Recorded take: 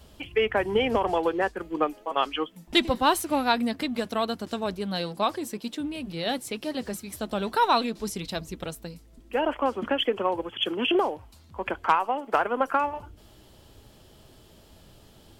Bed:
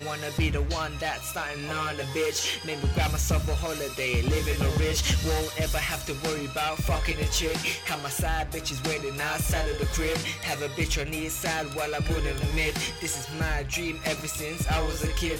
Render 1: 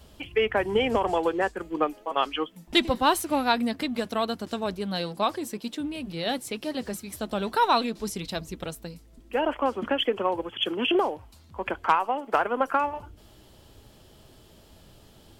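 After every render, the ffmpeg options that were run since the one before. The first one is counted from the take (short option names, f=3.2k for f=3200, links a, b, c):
-filter_complex "[0:a]asettb=1/sr,asplit=3[a][b][c];[a]atrim=end=0.694[d];[b]atrim=start=0.69:end=1.7,asetpts=PTS-STARTPTS,afade=t=in:d=0.004:c=qsin,afade=t=out:st=1.006:d=0.004:c=qsin,equalizer=f=7.6k:t=o:w=0.4:g=6.5[e];[c]atrim=start=1.696[f];[d][e]acrossfade=d=0.004:c1=hsin:c2=qsin[g];[g][f]acrossfade=d=0.004:c1=qsin:c2=hsin"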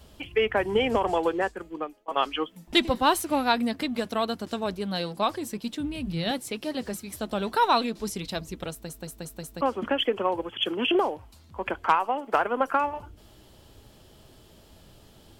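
-filter_complex "[0:a]asettb=1/sr,asplit=3[a][b][c];[a]atrim=end=5.104[d];[b]atrim=start=5.1:end=6.31,asetpts=PTS-STARTPTS,afade=t=in:d=0.004:c=qsin,afade=t=out:st=1.206:d=0.004:c=qsin,asubboost=boost=9:cutoff=210[e];[c]atrim=start=6.306[f];[d][e]acrossfade=d=0.004:c1=hsin:c2=qsin[g];[g][f]acrossfade=d=0.004:c1=qsin:c2=hsin,asplit=7[h][i][j][k][l][m][n];[h]atrim=end=2.08,asetpts=PTS-STARTPTS,afade=t=out:st=1.33:d=0.75:silence=0.0944061[o];[i]atrim=start=2.08:end=8.892,asetpts=PTS-STARTPTS,afade=t=in:d=0.004:c=hsin:silence=0.0944061[p];[j]atrim=start=8.708:end=8.892[q];[k]atrim=start=8.708:end=8.892[r];[l]atrim=start=8.708:end=8.892[s];[m]atrim=start=8.708:end=8.892[t];[n]atrim=start=9.608[u];[o][p]concat=n=2:v=0:a=1[v];[v][q]acrossfade=d=0.004:c1=hsin:c2=hsin[w];[w][r]acrossfade=d=0.004:c1=hsin:c2=hsin[x];[x][s]acrossfade=d=0.004:c1=hsin:c2=hsin[y];[y][t]acrossfade=d=0.004:c1=hsin:c2=hsin[z];[z][u]acrossfade=d=0.004:c1=hsin:c2=hsin"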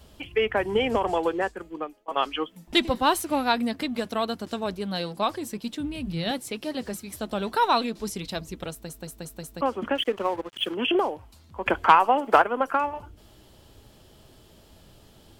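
-filter_complex "[0:a]asettb=1/sr,asplit=3[a][b][c];[a]atrim=end=9.954[d];[b]atrim=start=9.95:end=10.74,asetpts=PTS-STARTPTS,afade=t=in:d=0.004:c=qsin,afade=t=out:st=0.786:d=0.004:c=qsin,aeval=exprs='sgn(val(0))*max(abs(val(0))-0.00668,0)':c=same[e];[c]atrim=start=10.736[f];[d][e]acrossfade=d=0.004:c1=hsin:c2=qsin[g];[g][f]acrossfade=d=0.004:c1=qsin:c2=hsin,asettb=1/sr,asplit=3[h][i][j];[h]atrim=end=11.664[k];[i]atrim=start=11.66:end=12.42,asetpts=PTS-STARTPTS,afade=t=in:d=0.004:c=qsin,afade=t=out:st=0.756:d=0.004:c=qsin,acontrast=75[l];[j]atrim=start=12.416[m];[k][l]acrossfade=d=0.004:c1=hsin:c2=qsin[n];[n][m]acrossfade=d=0.004:c1=qsin:c2=hsin"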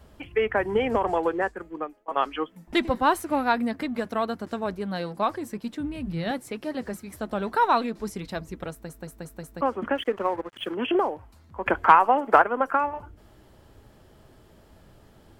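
-af "highshelf=f=2.4k:t=q:w=1.5:g=-6.5"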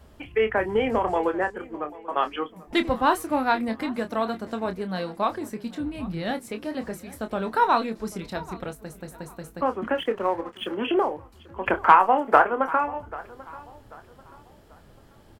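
-filter_complex "[0:a]asplit=2[a][b];[b]adelay=27,volume=-9dB[c];[a][c]amix=inputs=2:normalize=0,asplit=2[d][e];[e]adelay=789,lowpass=f=4.9k:p=1,volume=-19.5dB,asplit=2[f][g];[g]adelay=789,lowpass=f=4.9k:p=1,volume=0.33,asplit=2[h][i];[i]adelay=789,lowpass=f=4.9k:p=1,volume=0.33[j];[d][f][h][j]amix=inputs=4:normalize=0"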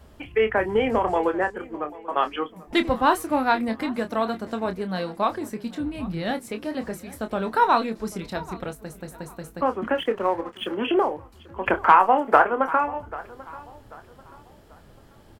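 -af "volume=1.5dB,alimiter=limit=-3dB:level=0:latency=1"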